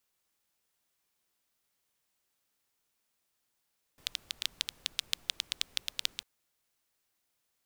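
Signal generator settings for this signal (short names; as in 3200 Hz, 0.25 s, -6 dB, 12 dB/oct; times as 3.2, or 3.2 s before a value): rain from filtered ticks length 2.25 s, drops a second 8.8, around 3500 Hz, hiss -22.5 dB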